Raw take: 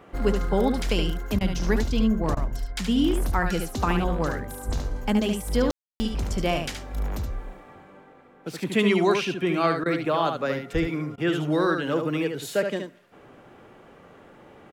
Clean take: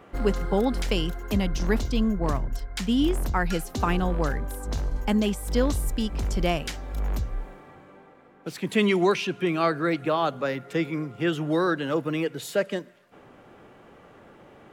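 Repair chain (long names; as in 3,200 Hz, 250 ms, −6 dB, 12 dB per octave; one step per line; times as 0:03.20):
high-pass at the plosives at 0:04.67/0:10.73
ambience match 0:05.71–0:06.00
repair the gap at 0:01.39/0:02.35/0:09.84/0:11.16, 17 ms
echo removal 73 ms −6 dB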